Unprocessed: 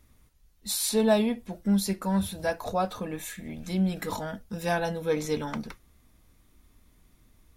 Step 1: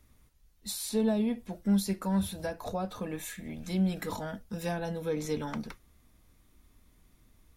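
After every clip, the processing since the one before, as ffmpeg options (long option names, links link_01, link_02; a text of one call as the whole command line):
ffmpeg -i in.wav -filter_complex "[0:a]acrossover=split=400[link_01][link_02];[link_02]acompressor=threshold=-32dB:ratio=10[link_03];[link_01][link_03]amix=inputs=2:normalize=0,volume=-2dB" out.wav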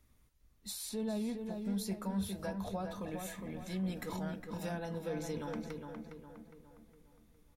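ffmpeg -i in.wav -filter_complex "[0:a]alimiter=level_in=0.5dB:limit=-24dB:level=0:latency=1:release=18,volume=-0.5dB,asplit=2[link_01][link_02];[link_02]adelay=410,lowpass=frequency=2600:poles=1,volume=-5dB,asplit=2[link_03][link_04];[link_04]adelay=410,lowpass=frequency=2600:poles=1,volume=0.46,asplit=2[link_05][link_06];[link_06]adelay=410,lowpass=frequency=2600:poles=1,volume=0.46,asplit=2[link_07][link_08];[link_08]adelay=410,lowpass=frequency=2600:poles=1,volume=0.46,asplit=2[link_09][link_10];[link_10]adelay=410,lowpass=frequency=2600:poles=1,volume=0.46,asplit=2[link_11][link_12];[link_12]adelay=410,lowpass=frequency=2600:poles=1,volume=0.46[link_13];[link_01][link_03][link_05][link_07][link_09][link_11][link_13]amix=inputs=7:normalize=0,volume=-6dB" out.wav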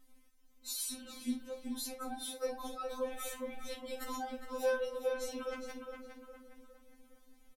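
ffmpeg -i in.wav -filter_complex "[0:a]asplit=2[link_01][link_02];[link_02]adelay=46,volume=-12.5dB[link_03];[link_01][link_03]amix=inputs=2:normalize=0,afftfilt=real='re*3.46*eq(mod(b,12),0)':imag='im*3.46*eq(mod(b,12),0)':win_size=2048:overlap=0.75,volume=6dB" out.wav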